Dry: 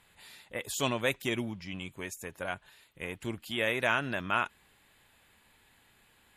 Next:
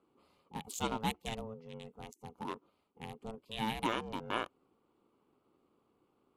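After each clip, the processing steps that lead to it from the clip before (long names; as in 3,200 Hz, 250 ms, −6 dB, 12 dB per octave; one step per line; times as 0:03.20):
adaptive Wiener filter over 25 samples
phaser with its sweep stopped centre 690 Hz, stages 4
ring modulation 330 Hz
level +2 dB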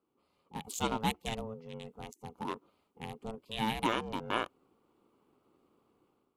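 automatic gain control gain up to 11 dB
level −8 dB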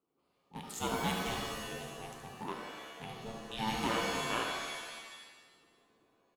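single-tap delay 73 ms −8 dB
reverb with rising layers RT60 1.3 s, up +7 semitones, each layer −2 dB, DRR 2.5 dB
level −4.5 dB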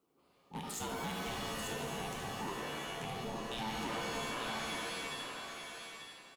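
downward compressor 3 to 1, threshold −43 dBFS, peak gain reduction 10.5 dB
soft clipping −39.5 dBFS, distortion −15 dB
repeating echo 887 ms, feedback 16%, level −5.5 dB
level +6.5 dB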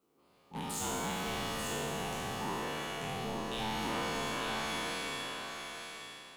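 peak hold with a decay on every bin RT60 1.93 s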